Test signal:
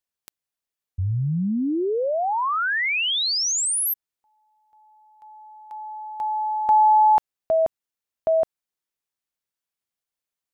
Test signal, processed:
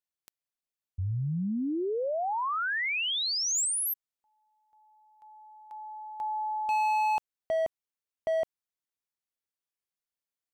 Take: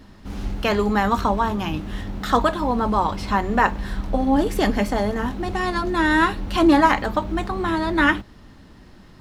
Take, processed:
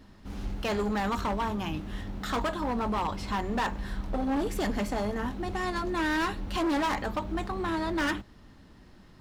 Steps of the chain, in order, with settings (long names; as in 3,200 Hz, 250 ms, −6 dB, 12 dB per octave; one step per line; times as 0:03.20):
dynamic equaliser 7,200 Hz, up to +4 dB, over −51 dBFS, Q 4.6
gain into a clipping stage and back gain 18 dB
level −7 dB